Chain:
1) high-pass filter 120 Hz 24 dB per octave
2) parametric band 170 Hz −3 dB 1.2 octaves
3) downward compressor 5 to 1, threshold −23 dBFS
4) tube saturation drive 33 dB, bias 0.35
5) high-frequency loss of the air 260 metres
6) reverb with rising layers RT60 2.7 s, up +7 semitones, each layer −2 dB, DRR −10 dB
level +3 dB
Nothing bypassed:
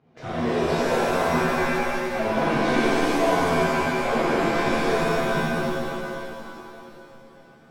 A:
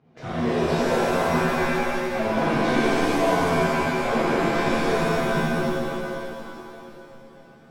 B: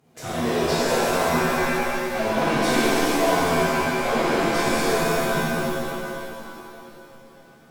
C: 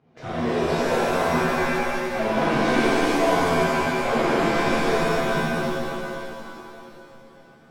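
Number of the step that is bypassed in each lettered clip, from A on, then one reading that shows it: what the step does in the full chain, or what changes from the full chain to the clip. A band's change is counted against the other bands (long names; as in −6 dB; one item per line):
2, 125 Hz band +2.0 dB
5, 8 kHz band +7.5 dB
3, average gain reduction 2.0 dB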